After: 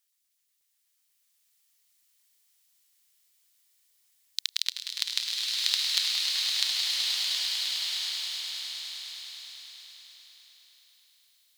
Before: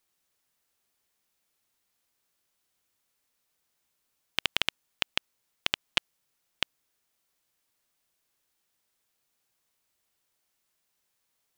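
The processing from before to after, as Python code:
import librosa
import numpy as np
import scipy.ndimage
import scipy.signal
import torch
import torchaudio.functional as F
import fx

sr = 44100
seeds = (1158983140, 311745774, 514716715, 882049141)

y = fx.tone_stack(x, sr, knobs='5-5-5')
y = fx.formant_shift(y, sr, semitones=5)
y = fx.filter_lfo_highpass(y, sr, shape='saw_up', hz=8.2, low_hz=530.0, high_hz=4000.0, q=0.76)
y = fx.low_shelf(y, sr, hz=130.0, db=9.0)
y = fx.echo_swell(y, sr, ms=103, loudest=5, wet_db=-10.5)
y = fx.rev_bloom(y, sr, seeds[0], attack_ms=1390, drr_db=-4.5)
y = F.gain(torch.from_numpy(y), 7.5).numpy()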